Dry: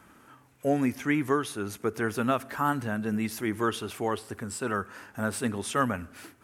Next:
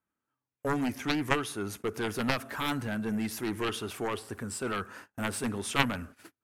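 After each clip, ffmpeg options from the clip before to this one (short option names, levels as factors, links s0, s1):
-af "agate=range=0.0251:threshold=0.00631:ratio=16:detection=peak,aeval=exprs='0.282*(cos(1*acos(clip(val(0)/0.282,-1,1)))-cos(1*PI/2))+0.141*(cos(3*acos(clip(val(0)/0.282,-1,1)))-cos(3*PI/2))':c=same,volume=1.88"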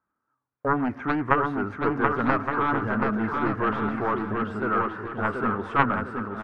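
-filter_complex "[0:a]lowpass=f=1300:t=q:w=2.3,asplit=2[s0][s1];[s1]aecho=0:1:730|1168|1431|1588|1683:0.631|0.398|0.251|0.158|0.1[s2];[s0][s2]amix=inputs=2:normalize=0,volume=1.5"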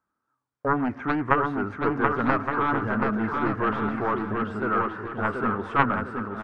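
-af "aresample=22050,aresample=44100"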